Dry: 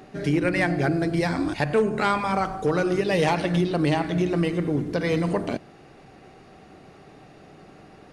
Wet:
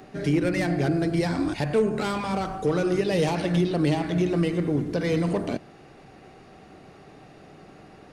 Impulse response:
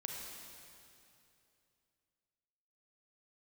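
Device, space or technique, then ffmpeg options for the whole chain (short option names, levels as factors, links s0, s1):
one-band saturation: -filter_complex "[0:a]acrossover=split=590|3400[s0][s1][s2];[s1]asoftclip=type=tanh:threshold=0.0282[s3];[s0][s3][s2]amix=inputs=3:normalize=0"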